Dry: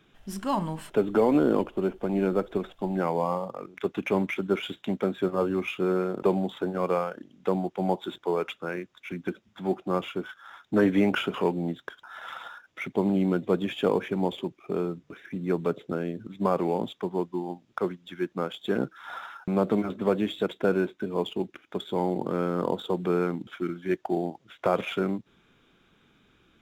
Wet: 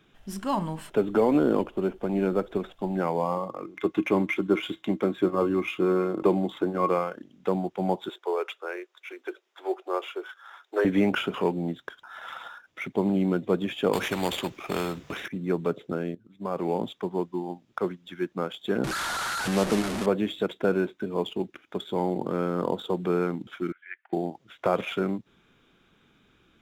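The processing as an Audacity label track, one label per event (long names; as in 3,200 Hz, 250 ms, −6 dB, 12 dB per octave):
3.370000	7.150000	hollow resonant body resonances 320/1,100/2,100 Hz, height 12 dB, ringing for 100 ms
8.090000	10.850000	elliptic high-pass filter 370 Hz, stop band 50 dB
13.930000	15.280000	every bin compressed towards the loudest bin 2 to 1
16.150000	16.710000	fade in quadratic, from −16.5 dB
18.840000	20.060000	linear delta modulator 64 kbit/s, step −24 dBFS
23.720000	24.130000	flat-topped band-pass 1,900 Hz, Q 2.2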